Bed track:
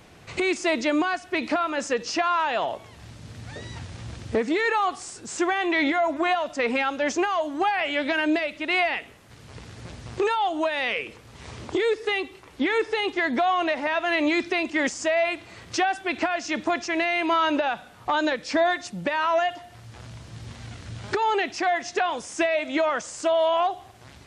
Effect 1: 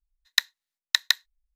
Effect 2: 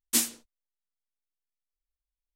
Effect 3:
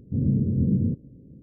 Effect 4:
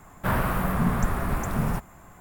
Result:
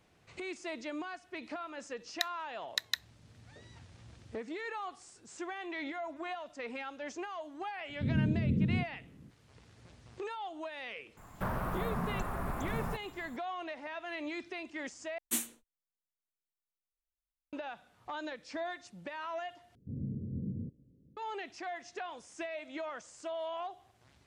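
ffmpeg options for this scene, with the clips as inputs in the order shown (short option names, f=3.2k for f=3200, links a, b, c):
-filter_complex "[3:a]asplit=2[a][b];[0:a]volume=-17dB[c];[4:a]acrossover=split=490|1300[d][e][f];[d]acompressor=threshold=-30dB:ratio=4[g];[e]acompressor=threshold=-32dB:ratio=4[h];[f]acompressor=threshold=-45dB:ratio=4[i];[g][h][i]amix=inputs=3:normalize=0[j];[2:a]equalizer=f=5k:w=3.2:g=-14[k];[c]asplit=3[l][m][n];[l]atrim=end=15.184[o];[k]atrim=end=2.35,asetpts=PTS-STARTPTS,volume=-7dB[p];[m]atrim=start=17.526:end=19.754[q];[b]atrim=end=1.42,asetpts=PTS-STARTPTS,volume=-16dB[r];[n]atrim=start=21.166[s];[1:a]atrim=end=1.55,asetpts=PTS-STARTPTS,volume=-12dB,afade=t=in:d=0.004:c=hsin,afade=t=out:st=1.546:d=0.004:c=hsin,adelay=1830[t];[a]atrim=end=1.42,asetpts=PTS-STARTPTS,volume=-7.5dB,afade=t=in:d=0.004:c=hsin,afade=t=out:st=1.416:d=0.004:c=hsin,adelay=7890[u];[j]atrim=end=2.2,asetpts=PTS-STARTPTS,volume=-5dB,afade=t=in:d=0.004:c=hsin,afade=t=out:st=2.196:d=0.004:c=hsin,adelay=11170[v];[o][p]acrossfade=d=0.004:c1=hsin:c2=hsin[w];[w][q]acrossfade=d=0.004:c1=hsin:c2=hsin[x];[x][r]acrossfade=d=0.004:c1=hsin:c2=hsin[y];[y][s]acrossfade=d=0.004:c1=hsin:c2=hsin[z];[z][t][u][v]amix=inputs=4:normalize=0"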